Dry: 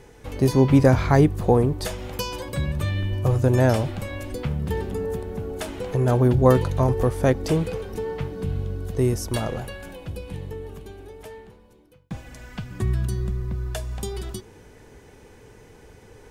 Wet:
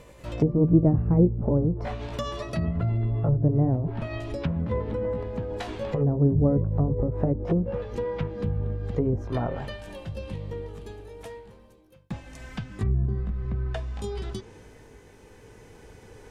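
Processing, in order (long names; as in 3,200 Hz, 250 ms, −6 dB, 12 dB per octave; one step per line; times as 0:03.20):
pitch glide at a constant tempo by +3 semitones ending unshifted
treble cut that deepens with the level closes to 350 Hz, closed at −18.5 dBFS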